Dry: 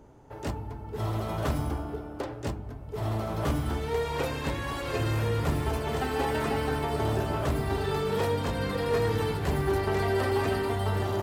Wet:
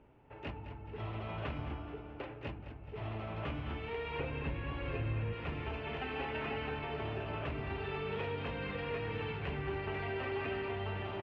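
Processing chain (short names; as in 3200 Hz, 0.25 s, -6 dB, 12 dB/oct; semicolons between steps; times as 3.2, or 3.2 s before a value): 4.19–5.33 tilt -2.5 dB/oct; compressor 2:1, threshold -28 dBFS, peak gain reduction 6 dB; ladder low-pass 2900 Hz, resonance 65%; feedback echo 0.213 s, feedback 47%, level -11.5 dB; gain +1.5 dB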